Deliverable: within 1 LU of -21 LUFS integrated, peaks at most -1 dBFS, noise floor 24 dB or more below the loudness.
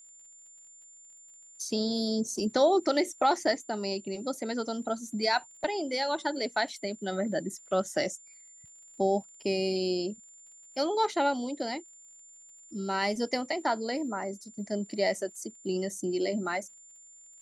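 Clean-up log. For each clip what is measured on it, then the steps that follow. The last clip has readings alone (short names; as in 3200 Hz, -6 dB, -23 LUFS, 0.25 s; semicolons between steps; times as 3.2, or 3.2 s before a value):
ticks 43/s; steady tone 7200 Hz; tone level -51 dBFS; loudness -30.5 LUFS; peak -14.0 dBFS; loudness target -21.0 LUFS
-> de-click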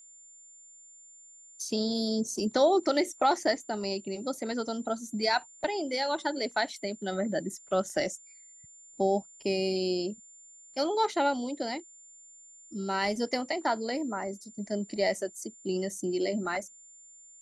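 ticks 0/s; steady tone 7200 Hz; tone level -51 dBFS
-> notch 7200 Hz, Q 30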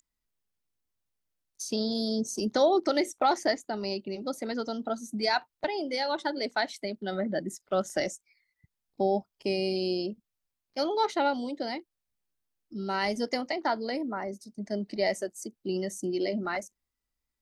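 steady tone none; loudness -30.5 LUFS; peak -14.0 dBFS; loudness target -21.0 LUFS
-> gain +9.5 dB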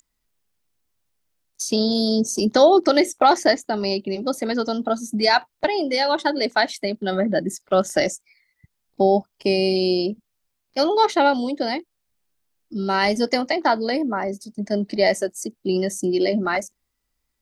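loudness -21.0 LUFS; peak -4.5 dBFS; noise floor -76 dBFS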